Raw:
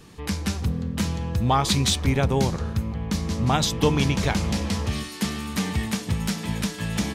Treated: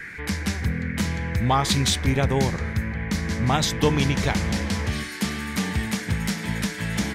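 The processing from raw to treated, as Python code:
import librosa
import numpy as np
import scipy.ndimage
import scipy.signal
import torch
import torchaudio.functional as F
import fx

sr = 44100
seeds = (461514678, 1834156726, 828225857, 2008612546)

y = fx.dmg_noise_band(x, sr, seeds[0], low_hz=1500.0, high_hz=2300.0, level_db=-38.0)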